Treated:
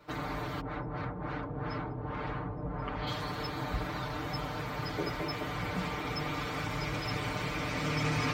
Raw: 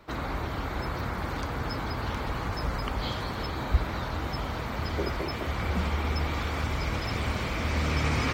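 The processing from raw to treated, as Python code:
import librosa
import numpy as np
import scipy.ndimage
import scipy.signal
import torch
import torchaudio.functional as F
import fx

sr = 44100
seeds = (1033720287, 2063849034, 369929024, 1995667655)

y = scipy.signal.sosfilt(scipy.signal.butter(2, 51.0, 'highpass', fs=sr, output='sos'), x)
y = y + 0.91 * np.pad(y, (int(6.7 * sr / 1000.0), 0))[:len(y)]
y = fx.filter_lfo_lowpass(y, sr, shape='sine', hz=fx.line((0.6, 4.4), (3.06, 1.0)), low_hz=580.0, high_hz=3000.0, q=0.71, at=(0.6, 3.06), fade=0.02)
y = y * librosa.db_to_amplitude(-5.5)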